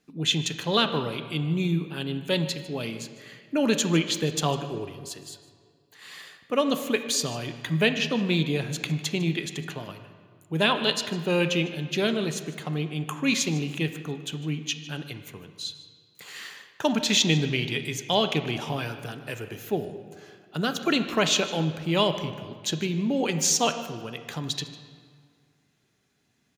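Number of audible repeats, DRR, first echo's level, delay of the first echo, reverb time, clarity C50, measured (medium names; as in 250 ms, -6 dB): 1, 8.5 dB, -18.5 dB, 152 ms, 2.0 s, 9.5 dB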